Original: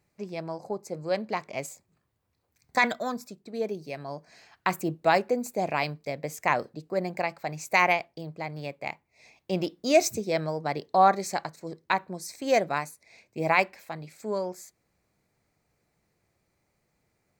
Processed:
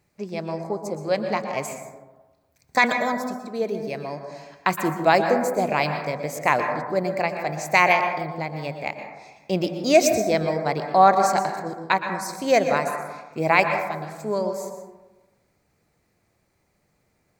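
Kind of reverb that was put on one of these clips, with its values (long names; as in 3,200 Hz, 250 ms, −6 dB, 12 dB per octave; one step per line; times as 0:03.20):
dense smooth reverb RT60 1.2 s, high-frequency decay 0.3×, pre-delay 105 ms, DRR 5.5 dB
level +4.5 dB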